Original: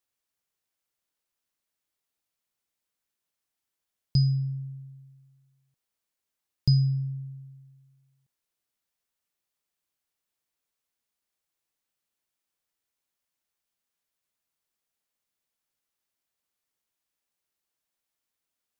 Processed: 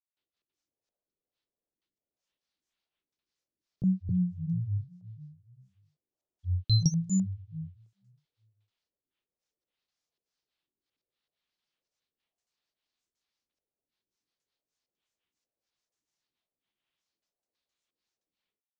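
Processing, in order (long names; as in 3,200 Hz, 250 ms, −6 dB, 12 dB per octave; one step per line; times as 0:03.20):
auto-filter low-pass square 1.1 Hz 450–4,600 Hz
granular cloud 218 ms, grains 14 per second, spray 513 ms, pitch spread up and down by 7 semitones
level +1.5 dB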